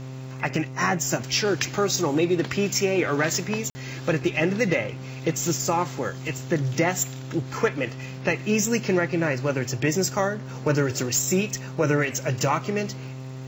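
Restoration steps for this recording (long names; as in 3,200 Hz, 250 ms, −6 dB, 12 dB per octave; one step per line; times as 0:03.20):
click removal
hum removal 130.7 Hz, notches 11
repair the gap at 0:03.70, 50 ms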